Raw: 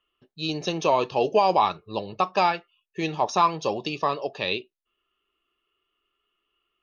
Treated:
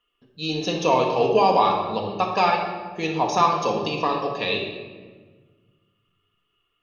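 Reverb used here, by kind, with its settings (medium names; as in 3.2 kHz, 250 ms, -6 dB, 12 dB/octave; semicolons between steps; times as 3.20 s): simulated room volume 1300 m³, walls mixed, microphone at 1.8 m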